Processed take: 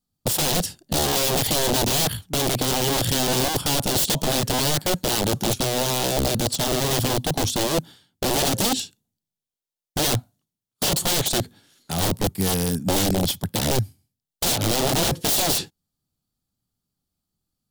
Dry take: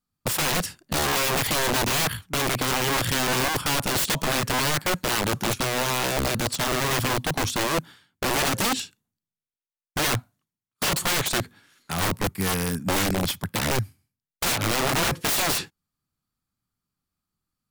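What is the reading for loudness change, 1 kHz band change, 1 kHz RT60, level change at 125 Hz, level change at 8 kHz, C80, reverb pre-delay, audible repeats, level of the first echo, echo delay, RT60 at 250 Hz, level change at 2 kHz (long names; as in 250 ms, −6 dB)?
+2.0 dB, −0.5 dB, no reverb audible, +3.5 dB, +3.5 dB, no reverb audible, no reverb audible, no echo audible, no echo audible, no echo audible, no reverb audible, −5.0 dB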